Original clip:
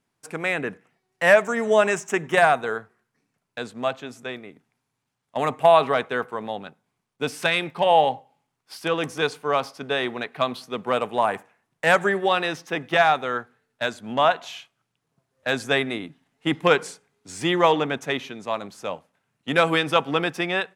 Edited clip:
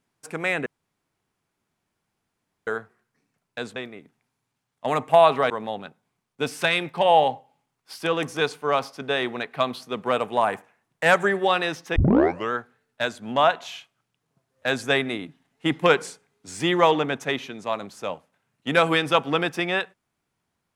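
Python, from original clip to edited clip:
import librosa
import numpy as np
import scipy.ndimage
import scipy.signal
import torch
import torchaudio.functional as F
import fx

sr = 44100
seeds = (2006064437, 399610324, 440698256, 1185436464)

y = fx.edit(x, sr, fx.room_tone_fill(start_s=0.66, length_s=2.01),
    fx.cut(start_s=3.76, length_s=0.51),
    fx.cut(start_s=6.01, length_s=0.3),
    fx.tape_start(start_s=12.77, length_s=0.56), tone=tone)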